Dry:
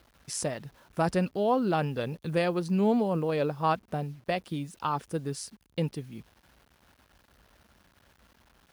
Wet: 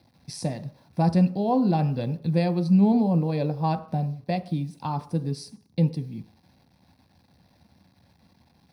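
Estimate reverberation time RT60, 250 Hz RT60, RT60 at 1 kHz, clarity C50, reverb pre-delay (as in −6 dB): 0.50 s, 0.45 s, 0.55 s, 15.5 dB, 3 ms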